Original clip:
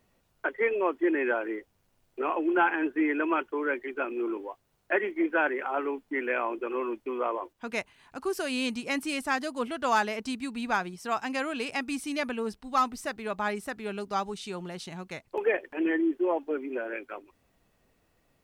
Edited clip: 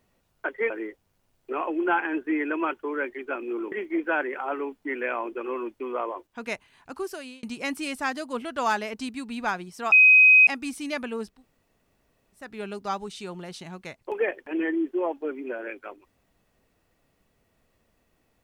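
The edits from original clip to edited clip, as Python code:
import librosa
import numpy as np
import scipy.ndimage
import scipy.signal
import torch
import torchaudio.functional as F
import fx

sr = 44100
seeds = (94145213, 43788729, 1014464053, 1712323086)

y = fx.edit(x, sr, fx.cut(start_s=0.7, length_s=0.69),
    fx.cut(start_s=4.41, length_s=0.57),
    fx.fade_out_span(start_s=8.19, length_s=0.5),
    fx.bleep(start_s=11.18, length_s=0.55, hz=2520.0, db=-11.0),
    fx.room_tone_fill(start_s=12.59, length_s=1.11, crossfade_s=0.24), tone=tone)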